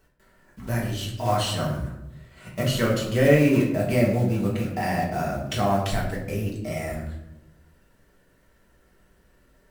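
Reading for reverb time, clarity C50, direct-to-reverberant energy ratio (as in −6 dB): 0.90 s, 5.5 dB, −3.0 dB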